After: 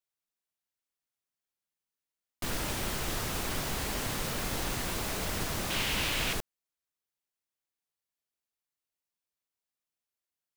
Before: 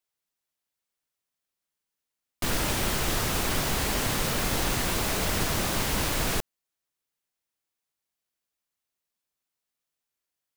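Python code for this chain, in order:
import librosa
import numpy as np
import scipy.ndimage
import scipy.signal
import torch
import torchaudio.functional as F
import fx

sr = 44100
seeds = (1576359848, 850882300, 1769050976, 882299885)

y = fx.peak_eq(x, sr, hz=2800.0, db=10.5, octaves=1.2, at=(5.7, 6.33))
y = F.gain(torch.from_numpy(y), -6.5).numpy()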